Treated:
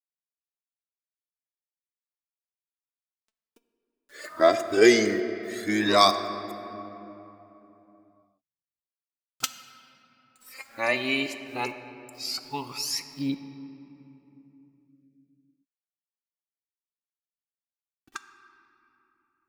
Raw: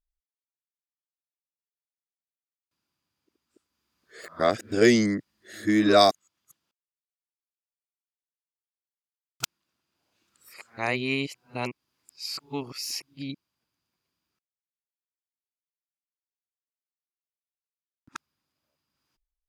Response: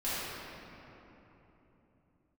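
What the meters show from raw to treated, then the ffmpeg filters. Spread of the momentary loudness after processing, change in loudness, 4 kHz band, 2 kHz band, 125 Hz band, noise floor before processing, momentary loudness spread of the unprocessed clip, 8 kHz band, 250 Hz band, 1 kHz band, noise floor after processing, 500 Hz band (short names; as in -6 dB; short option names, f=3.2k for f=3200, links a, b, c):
24 LU, +0.5 dB, +2.5 dB, +2.5 dB, -5.0 dB, under -85 dBFS, 19 LU, +3.0 dB, -1.5 dB, +2.0 dB, under -85 dBFS, +1.5 dB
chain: -filter_complex "[0:a]lowshelf=f=160:g=-10.5,acrusher=bits=9:mix=0:aa=0.000001,aphaser=in_gain=1:out_gain=1:delay=4.6:decay=0.63:speed=0.15:type=triangular,asplit=2[a][b];[1:a]atrim=start_sample=2205[c];[b][c]afir=irnorm=-1:irlink=0,volume=-16.5dB[d];[a][d]amix=inputs=2:normalize=0"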